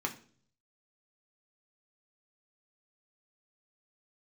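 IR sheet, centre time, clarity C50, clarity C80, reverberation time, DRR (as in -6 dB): 10 ms, 14.0 dB, 18.5 dB, 0.45 s, 1.5 dB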